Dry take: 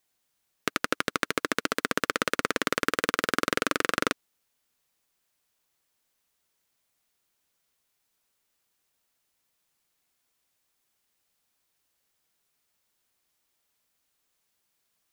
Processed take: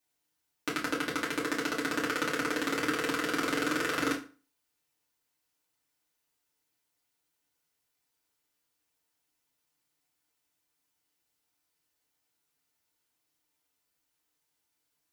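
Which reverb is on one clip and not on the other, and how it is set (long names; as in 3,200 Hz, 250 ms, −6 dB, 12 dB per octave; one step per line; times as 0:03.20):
feedback delay network reverb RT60 0.36 s, low-frequency decay 1.1×, high-frequency decay 0.85×, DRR −6 dB
level −10.5 dB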